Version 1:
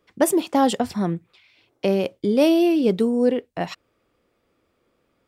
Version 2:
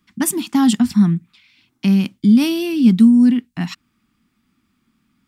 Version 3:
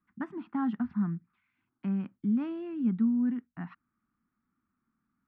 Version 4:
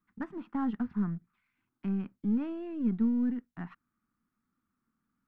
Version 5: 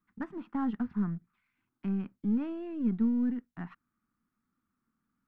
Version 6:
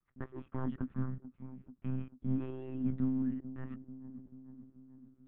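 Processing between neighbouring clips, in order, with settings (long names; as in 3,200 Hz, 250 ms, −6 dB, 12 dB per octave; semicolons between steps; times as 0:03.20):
drawn EQ curve 110 Hz 0 dB, 230 Hz +11 dB, 520 Hz −27 dB, 810 Hz −8 dB, 1,200 Hz −2 dB, 7,200 Hz +3 dB; level +3 dB
transistor ladder low-pass 1,700 Hz, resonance 45%; level −7.5 dB
gain on one half-wave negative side −3 dB
no processing that can be heard
delay with a low-pass on its return 438 ms, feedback 63%, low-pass 740 Hz, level −13 dB; one-pitch LPC vocoder at 8 kHz 130 Hz; level −4.5 dB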